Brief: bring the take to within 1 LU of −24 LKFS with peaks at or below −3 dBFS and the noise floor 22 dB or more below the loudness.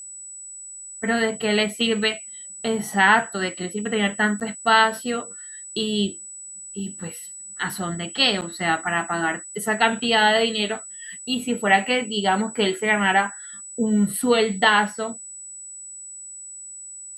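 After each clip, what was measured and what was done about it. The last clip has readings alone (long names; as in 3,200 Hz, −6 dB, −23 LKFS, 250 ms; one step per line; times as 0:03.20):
number of dropouts 2; longest dropout 8.6 ms; interfering tone 7,900 Hz; level of the tone −36 dBFS; integrated loudness −21.5 LKFS; sample peak −4.0 dBFS; target loudness −24.0 LKFS
→ repair the gap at 0:04.40/0:08.41, 8.6 ms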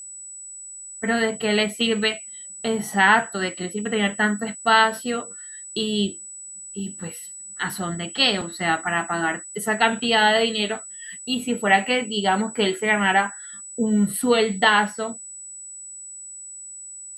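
number of dropouts 0; interfering tone 7,900 Hz; level of the tone −36 dBFS
→ notch filter 7,900 Hz, Q 30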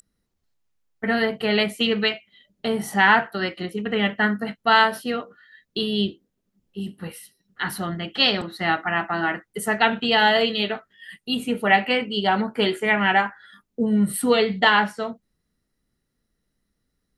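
interfering tone none found; integrated loudness −21.5 LKFS; sample peak −4.5 dBFS; target loudness −24.0 LKFS
→ level −2.5 dB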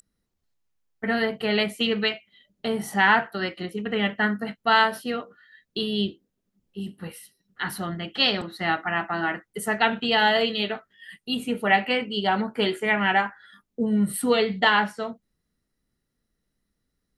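integrated loudness −24.0 LKFS; sample peak −7.0 dBFS; background noise floor −79 dBFS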